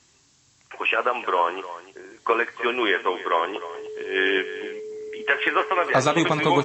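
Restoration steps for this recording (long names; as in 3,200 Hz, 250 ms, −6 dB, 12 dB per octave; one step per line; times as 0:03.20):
clipped peaks rebuilt −7 dBFS
notch filter 430 Hz, Q 30
broadband denoise 10 dB, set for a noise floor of −58 dBFS
echo removal 304 ms −15 dB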